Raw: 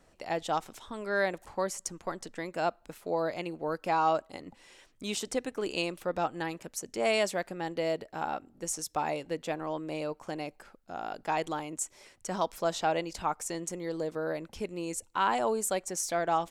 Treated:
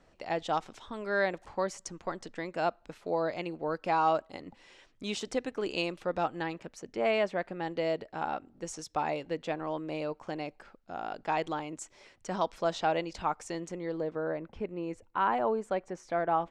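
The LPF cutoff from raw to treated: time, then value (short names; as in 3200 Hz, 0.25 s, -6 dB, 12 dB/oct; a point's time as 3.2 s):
6.3 s 5300 Hz
7.28 s 2200 Hz
7.73 s 4700 Hz
13.48 s 4700 Hz
14.28 s 1900 Hz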